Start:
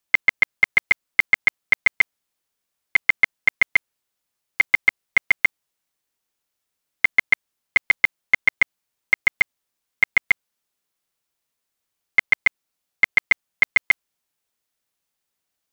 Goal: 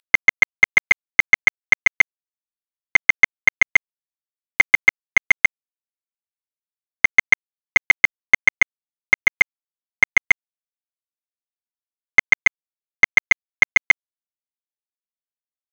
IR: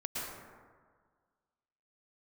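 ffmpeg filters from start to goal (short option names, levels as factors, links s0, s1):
-af "acompressor=mode=upward:threshold=0.0891:ratio=2.5,aresample=11025,aresample=44100,aeval=exprs='sgn(val(0))*max(abs(val(0))-0.00944,0)':c=same,acontrast=39"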